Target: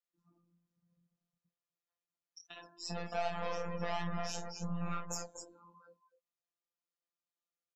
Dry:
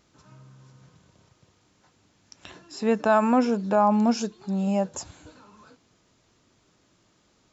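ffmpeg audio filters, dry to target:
ffmpeg -i in.wav -af "aeval=exprs='(tanh(22.4*val(0)+0.75)-tanh(0.75))/22.4':channel_layout=same,aecho=1:1:48|51|246|248:0.398|0.158|0.316|0.141,afftdn=noise_reduction=34:noise_floor=-47,lowshelf=frequency=330:gain=-8.5,atempo=0.97,bass=frequency=250:gain=-8,treble=frequency=4000:gain=-1,flanger=delay=19:depth=7.3:speed=2.7,aecho=1:1:4.2:0.71,acompressor=threshold=-41dB:ratio=3,afftfilt=real='hypot(re,im)*cos(PI*b)':imag='0':win_size=1024:overlap=0.75,volume=8.5dB" out.wav

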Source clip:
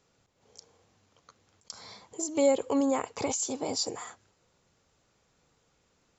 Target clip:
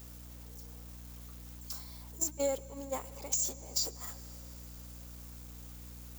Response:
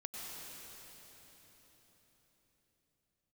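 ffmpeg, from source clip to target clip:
-filter_complex "[0:a]aeval=exprs='val(0)+0.5*0.0188*sgn(val(0))':channel_layout=same,aemphasis=mode=production:type=bsi,agate=range=-24dB:threshold=-23dB:ratio=16:detection=peak,equalizer=frequency=550:width=0.45:gain=4,acompressor=threshold=-32dB:ratio=4,aeval=exprs='val(0)+0.00316*(sin(2*PI*60*n/s)+sin(2*PI*2*60*n/s)/2+sin(2*PI*3*60*n/s)/3+sin(2*PI*4*60*n/s)/4+sin(2*PI*5*60*n/s)/5)':channel_layout=same,asplit=2[link_01][link_02];[1:a]atrim=start_sample=2205,asetrate=42777,aresample=44100[link_03];[link_02][link_03]afir=irnorm=-1:irlink=0,volume=-15.5dB[link_04];[link_01][link_04]amix=inputs=2:normalize=0"

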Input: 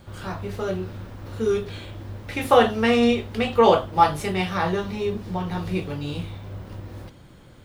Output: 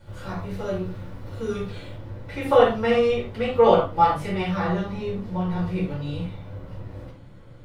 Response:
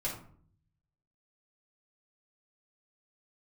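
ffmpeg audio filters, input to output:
-filter_complex "[0:a]asetnsamples=nb_out_samples=441:pad=0,asendcmd='1.95 highshelf g -8.5',highshelf=frequency=4400:gain=-2[link_01];[1:a]atrim=start_sample=2205,atrim=end_sample=3969,asetrate=40131,aresample=44100[link_02];[link_01][link_02]afir=irnorm=-1:irlink=0,volume=-5dB"

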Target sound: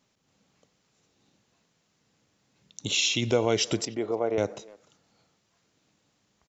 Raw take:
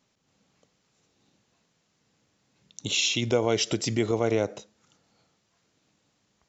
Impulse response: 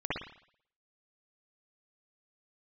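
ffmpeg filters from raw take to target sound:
-filter_complex "[0:a]asettb=1/sr,asplit=3[link_01][link_02][link_03];[link_01]atrim=end=3.854[link_04];[link_02]atrim=start=3.85:end=4.38,asetpts=PTS-STARTPTS,afade=type=in:duration=0.004:curve=qsin,afade=type=out:start_time=0.526:duration=0.004:curve=qsin,bandpass=frequency=660:width_type=q:width=0.93:csg=0[link_05];[link_03]atrim=start=4.376[link_06];[link_04][link_05]acrossfade=duration=0.004:curve1=hsin:curve2=qsin[link_07];[link_07][link_06]acrossfade=duration=0.004:curve1=qsin:curve2=hsin,asplit=2[link_08][link_09];[link_09]adelay=300,highpass=300,lowpass=3400,asoftclip=type=hard:threshold=-19.5dB,volume=-22dB[link_10];[link_08][link_10]amix=inputs=2:normalize=0"

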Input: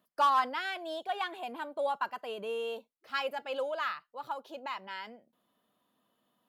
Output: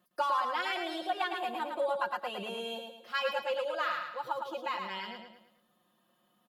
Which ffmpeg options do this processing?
ffmpeg -i in.wav -filter_complex "[0:a]aecho=1:1:5.6:0.96,acompressor=threshold=-28dB:ratio=6,asplit=2[link_01][link_02];[link_02]aecho=0:1:109|218|327|436|545:0.562|0.236|0.0992|0.0417|0.0175[link_03];[link_01][link_03]amix=inputs=2:normalize=0" out.wav

